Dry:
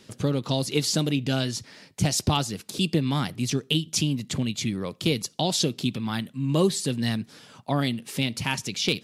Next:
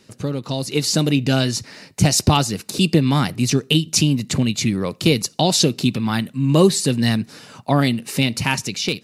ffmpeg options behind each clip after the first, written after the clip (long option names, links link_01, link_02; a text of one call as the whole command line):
ffmpeg -i in.wav -af "dynaudnorm=framelen=570:gausssize=3:maxgain=11.5dB,bandreject=frequency=3300:width=8.3" out.wav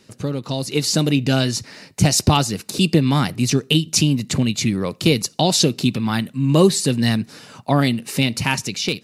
ffmpeg -i in.wav -af anull out.wav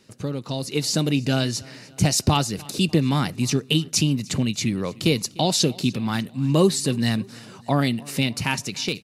ffmpeg -i in.wav -af "aecho=1:1:299|598|897:0.0708|0.0361|0.0184,volume=-4dB" out.wav